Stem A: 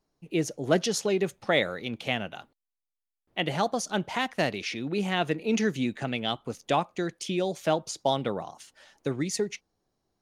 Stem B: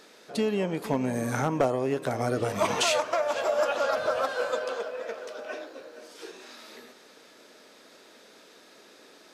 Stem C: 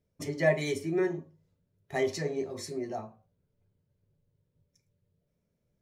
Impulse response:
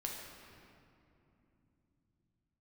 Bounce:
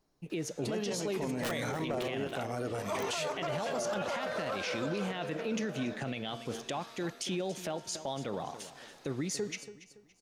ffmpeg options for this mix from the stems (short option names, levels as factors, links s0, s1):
-filter_complex "[0:a]bandreject=f=230:t=h:w=4,bandreject=f=460:t=h:w=4,bandreject=f=690:t=h:w=4,bandreject=f=920:t=h:w=4,bandreject=f=1150:t=h:w=4,bandreject=f=1380:t=h:w=4,bandreject=f=1610:t=h:w=4,bandreject=f=1840:t=h:w=4,bandreject=f=2070:t=h:w=4,bandreject=f=2300:t=h:w=4,bandreject=f=2530:t=h:w=4,bandreject=f=2760:t=h:w=4,bandreject=f=2990:t=h:w=4,bandreject=f=3220:t=h:w=4,bandreject=f=3450:t=h:w=4,bandreject=f=3680:t=h:w=4,bandreject=f=3910:t=h:w=4,bandreject=f=4140:t=h:w=4,bandreject=f=4370:t=h:w=4,bandreject=f=4600:t=h:w=4,bandreject=f=4830:t=h:w=4,bandreject=f=5060:t=h:w=4,bandreject=f=5290:t=h:w=4,bandreject=f=5520:t=h:w=4,bandreject=f=5750:t=h:w=4,bandreject=f=5980:t=h:w=4,bandreject=f=6210:t=h:w=4,bandreject=f=6440:t=h:w=4,bandreject=f=6670:t=h:w=4,bandreject=f=6900:t=h:w=4,bandreject=f=7130:t=h:w=4,bandreject=f=7360:t=h:w=4,bandreject=f=7590:t=h:w=4,bandreject=f=7820:t=h:w=4,bandreject=f=8050:t=h:w=4,bandreject=f=8280:t=h:w=4,bandreject=f=8510:t=h:w=4,bandreject=f=8740:t=h:w=4,acompressor=threshold=0.0251:ratio=5,volume=1.33,asplit=2[s0][s1];[s1]volume=0.158[s2];[1:a]adelay=300,volume=0.531[s3];[2:a]aeval=exprs='(mod(8.41*val(0)+1,2)-1)/8.41':c=same,adelay=1000,volume=0.398,asplit=2[s4][s5];[s5]volume=0.15[s6];[s2][s6]amix=inputs=2:normalize=0,aecho=0:1:283|566|849|1132|1415:1|0.32|0.102|0.0328|0.0105[s7];[s0][s3][s4][s7]amix=inputs=4:normalize=0,alimiter=level_in=1.26:limit=0.0631:level=0:latency=1:release=14,volume=0.794"